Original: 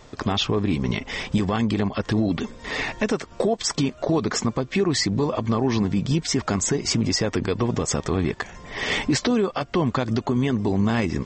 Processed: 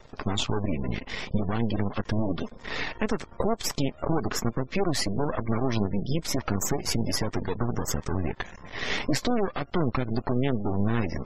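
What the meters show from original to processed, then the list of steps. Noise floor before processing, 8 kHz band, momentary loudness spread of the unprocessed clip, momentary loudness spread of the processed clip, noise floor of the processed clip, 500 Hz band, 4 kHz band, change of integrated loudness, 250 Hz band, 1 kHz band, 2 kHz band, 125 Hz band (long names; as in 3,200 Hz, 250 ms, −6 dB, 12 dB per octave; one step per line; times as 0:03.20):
−47 dBFS, −5.5 dB, 4 LU, 5 LU, −50 dBFS, −5.0 dB, −6.0 dB, −5.5 dB, −6.0 dB, −4.0 dB, −5.5 dB, −4.0 dB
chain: half-wave rectification
gate on every frequency bin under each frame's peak −30 dB strong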